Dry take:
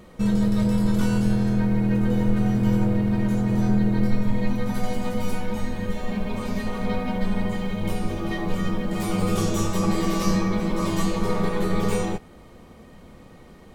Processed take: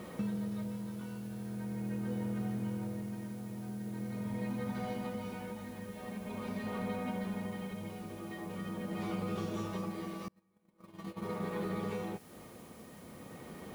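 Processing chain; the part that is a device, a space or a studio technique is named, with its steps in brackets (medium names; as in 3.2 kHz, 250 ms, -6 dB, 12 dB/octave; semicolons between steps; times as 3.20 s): medium wave at night (band-pass 110–3600 Hz; compression 5:1, threshold -38 dBFS, peak gain reduction 17.5 dB; tremolo 0.43 Hz, depth 55%; whistle 10 kHz -70 dBFS; white noise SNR 23 dB); 10.28–11.51 s: gate -40 dBFS, range -32 dB; trim +2.5 dB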